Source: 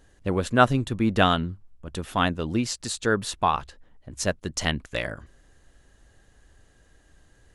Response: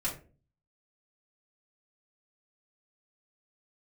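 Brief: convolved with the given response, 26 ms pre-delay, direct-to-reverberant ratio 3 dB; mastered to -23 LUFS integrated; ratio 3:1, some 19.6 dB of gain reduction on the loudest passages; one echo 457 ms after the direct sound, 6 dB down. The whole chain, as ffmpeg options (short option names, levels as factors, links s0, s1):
-filter_complex "[0:a]acompressor=threshold=0.01:ratio=3,aecho=1:1:457:0.501,asplit=2[s0][s1];[1:a]atrim=start_sample=2205,adelay=26[s2];[s1][s2]afir=irnorm=-1:irlink=0,volume=0.422[s3];[s0][s3]amix=inputs=2:normalize=0,volume=5.62"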